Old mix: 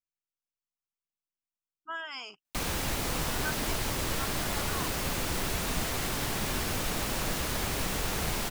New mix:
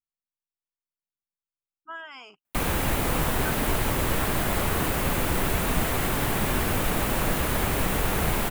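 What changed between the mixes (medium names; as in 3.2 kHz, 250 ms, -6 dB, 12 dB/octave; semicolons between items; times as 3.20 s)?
background +7.5 dB; master: add peaking EQ 5.3 kHz -11 dB 1.3 oct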